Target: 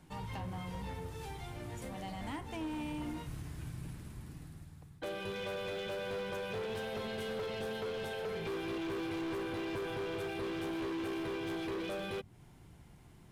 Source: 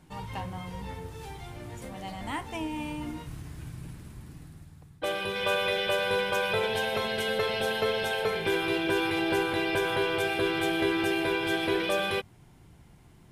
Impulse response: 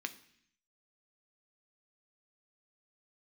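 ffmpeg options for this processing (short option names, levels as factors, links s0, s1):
-filter_complex "[0:a]acrossover=split=450[s0][s1];[s1]acompressor=threshold=0.01:ratio=4[s2];[s0][s2]amix=inputs=2:normalize=0,asoftclip=type=hard:threshold=0.0224,volume=0.75"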